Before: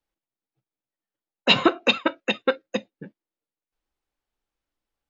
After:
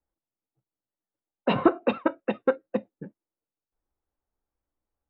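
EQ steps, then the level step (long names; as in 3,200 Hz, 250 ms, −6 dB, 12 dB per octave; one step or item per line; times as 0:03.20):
low-pass filter 1,200 Hz 12 dB per octave
high-frequency loss of the air 75 metres
parametric band 74 Hz +7.5 dB 0.44 octaves
0.0 dB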